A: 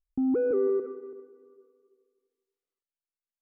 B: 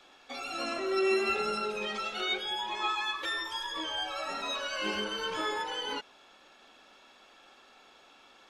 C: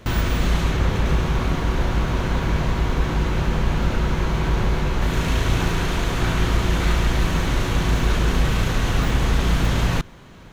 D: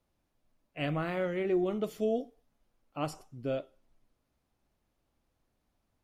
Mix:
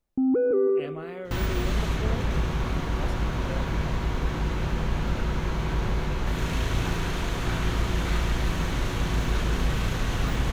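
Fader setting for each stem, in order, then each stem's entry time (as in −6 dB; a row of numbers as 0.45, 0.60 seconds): +3.0 dB, muted, −6.0 dB, −6.0 dB; 0.00 s, muted, 1.25 s, 0.00 s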